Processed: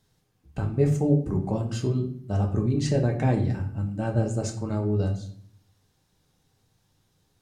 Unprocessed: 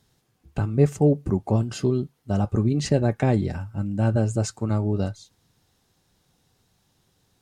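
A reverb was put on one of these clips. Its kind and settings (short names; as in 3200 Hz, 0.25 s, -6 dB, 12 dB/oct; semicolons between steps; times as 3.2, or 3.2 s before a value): shoebox room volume 75 m³, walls mixed, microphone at 0.54 m; gain -5 dB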